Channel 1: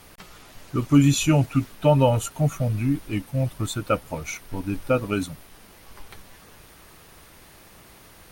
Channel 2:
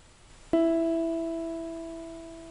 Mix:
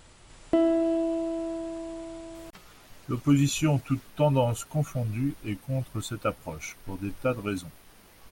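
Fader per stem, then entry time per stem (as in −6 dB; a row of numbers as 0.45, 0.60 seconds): −5.5, +1.5 decibels; 2.35, 0.00 seconds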